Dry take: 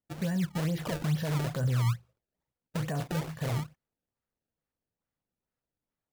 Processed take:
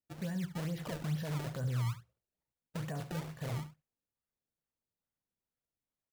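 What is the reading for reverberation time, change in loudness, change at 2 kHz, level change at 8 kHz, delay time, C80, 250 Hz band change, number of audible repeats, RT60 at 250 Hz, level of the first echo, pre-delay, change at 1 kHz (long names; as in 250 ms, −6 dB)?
no reverb audible, −7.0 dB, −7.0 dB, −7.0 dB, 72 ms, no reverb audible, −7.0 dB, 1, no reverb audible, −13.5 dB, no reverb audible, −7.0 dB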